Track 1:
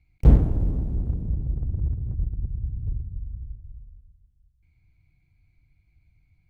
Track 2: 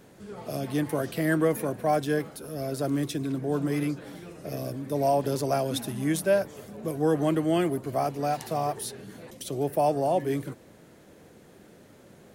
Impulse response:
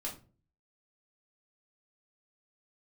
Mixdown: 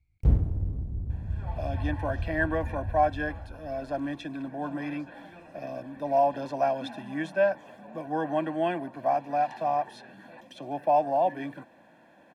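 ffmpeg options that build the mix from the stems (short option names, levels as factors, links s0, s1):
-filter_complex "[0:a]equalizer=f=87:w=1.8:g=9.5,volume=0.299[s0];[1:a]acrossover=split=7800[s1][s2];[s2]acompressor=threshold=0.00141:ratio=4:attack=1:release=60[s3];[s1][s3]amix=inputs=2:normalize=0,acrossover=split=240 3000:gain=0.0794 1 0.112[s4][s5][s6];[s4][s5][s6]amix=inputs=3:normalize=0,aecho=1:1:1.2:0.84,adelay=1100,volume=0.891[s7];[s0][s7]amix=inputs=2:normalize=0"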